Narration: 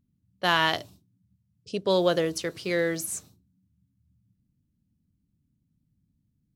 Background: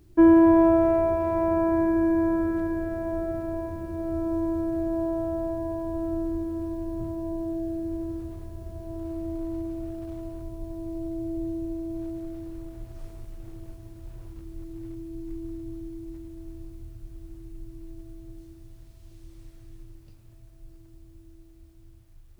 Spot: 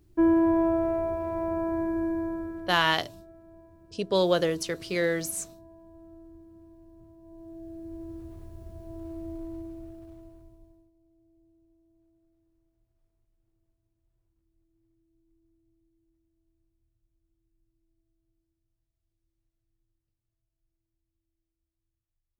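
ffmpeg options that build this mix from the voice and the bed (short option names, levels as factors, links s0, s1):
-filter_complex "[0:a]adelay=2250,volume=0.944[s0];[1:a]volume=2.99,afade=t=out:st=2.03:d=0.99:silence=0.177828,afade=t=in:st=7.21:d=1.23:silence=0.16788,afade=t=out:st=9.32:d=1.59:silence=0.0398107[s1];[s0][s1]amix=inputs=2:normalize=0"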